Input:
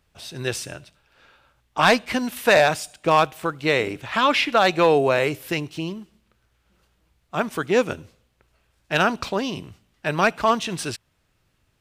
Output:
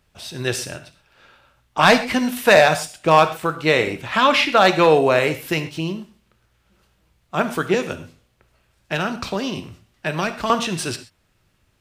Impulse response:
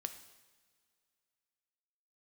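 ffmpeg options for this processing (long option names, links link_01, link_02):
-filter_complex "[0:a]asettb=1/sr,asplit=3[link_01][link_02][link_03];[link_01]atrim=end=7.744[link_04];[link_02]atrim=start=7.74:end=10.5,asetpts=PTS-STARTPTS,afade=type=in:duration=0.004:curve=qsin,afade=type=out:start_time=2.756:duration=0.004:curve=qsin,acrossover=split=370|2300[link_05][link_06][link_07];[link_05]acompressor=threshold=-30dB:ratio=4[link_08];[link_06]acompressor=threshold=-28dB:ratio=4[link_09];[link_07]acompressor=threshold=-33dB:ratio=4[link_10];[link_08][link_09][link_10]amix=inputs=3:normalize=0[link_11];[link_03]atrim=start=10.496[link_12];[link_04][link_11]acrossfade=duration=0.004:curve1=hsin:curve2=qsin[link_13];[link_13][link_12]acrossfade=duration=0.004:curve1=qsin:curve2=hsin[link_14];[1:a]atrim=start_sample=2205,atrim=end_sample=6174[link_15];[link_14][link_15]afir=irnorm=-1:irlink=0,volume=5.5dB"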